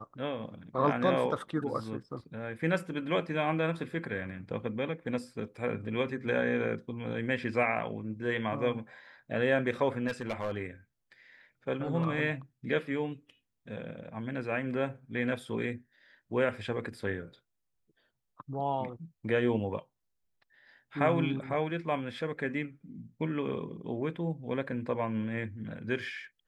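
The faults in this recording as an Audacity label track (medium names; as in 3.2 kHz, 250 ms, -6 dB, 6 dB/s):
10.070000	10.560000	clipped -28.5 dBFS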